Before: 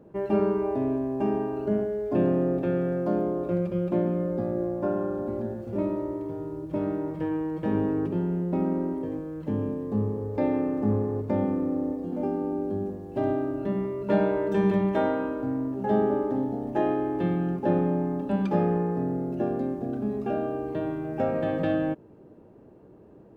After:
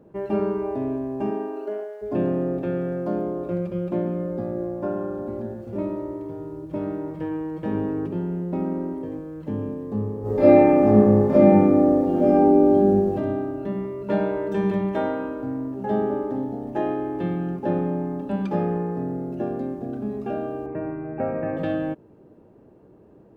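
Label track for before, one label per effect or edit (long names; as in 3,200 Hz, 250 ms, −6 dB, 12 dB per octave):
1.300000	2.010000	high-pass filter 180 Hz → 610 Hz 24 dB per octave
10.210000	13.130000	thrown reverb, RT60 0.98 s, DRR −11.5 dB
20.660000	21.570000	Butterworth low-pass 2,600 Hz 96 dB per octave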